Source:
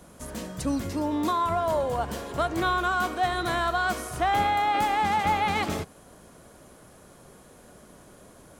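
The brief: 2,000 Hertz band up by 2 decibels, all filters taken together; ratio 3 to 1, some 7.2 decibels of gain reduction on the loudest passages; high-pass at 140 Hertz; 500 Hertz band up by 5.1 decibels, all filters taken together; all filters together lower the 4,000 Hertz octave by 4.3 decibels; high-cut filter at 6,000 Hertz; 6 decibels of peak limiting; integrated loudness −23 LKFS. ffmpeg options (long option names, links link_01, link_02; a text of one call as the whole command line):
ffmpeg -i in.wav -af "highpass=140,lowpass=6000,equalizer=frequency=500:width_type=o:gain=7,equalizer=frequency=2000:width_type=o:gain=3.5,equalizer=frequency=4000:width_type=o:gain=-6.5,acompressor=threshold=-27dB:ratio=3,volume=8.5dB,alimiter=limit=-14.5dB:level=0:latency=1" out.wav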